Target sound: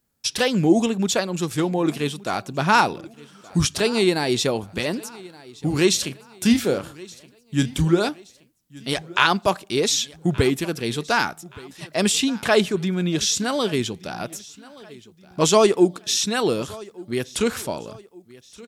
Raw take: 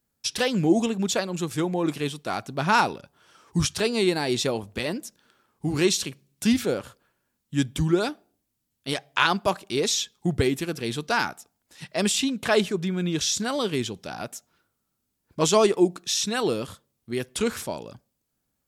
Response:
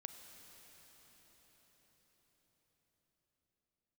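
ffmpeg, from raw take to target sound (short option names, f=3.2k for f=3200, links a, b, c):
-filter_complex "[0:a]asettb=1/sr,asplit=3[a][b][c];[a]atrim=end=5.964[d];[b]atrim=start=5.96:end=8.09,asetpts=PTS-STARTPTS,afade=t=in:d=0.004:c=qsin,afade=t=out:st=2.126:d=0.004:c=qsin,asplit=2[e][f];[f]adelay=30,volume=-11dB[g];[e][g]amix=inputs=2:normalize=0,atrim=end_sample=93933[h];[c]atrim=start=8.086[i];[d][h]acrossfade=d=0.004:c1=hsin:c2=qsin[j];[j][i]acrossfade=d=0.004:c1=qsin:c2=hsin,aecho=1:1:1173|2346|3519:0.0841|0.0353|0.0148,volume=3.5dB"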